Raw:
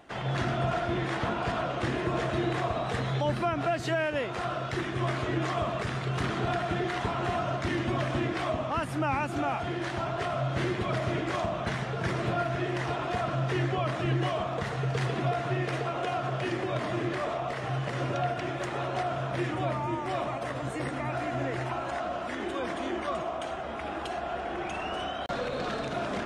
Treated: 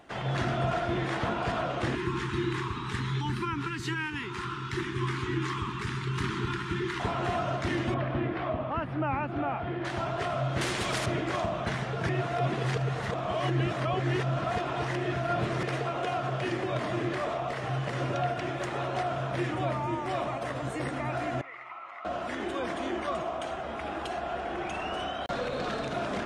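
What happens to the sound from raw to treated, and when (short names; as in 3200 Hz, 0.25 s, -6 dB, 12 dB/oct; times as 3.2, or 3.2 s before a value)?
1.95–7 elliptic band-stop 400–910 Hz
7.94–9.85 air absorption 380 m
10.61–11.06 spectral compressor 2:1
12.09–15.63 reverse
21.41–22.05 double band-pass 1600 Hz, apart 0.71 oct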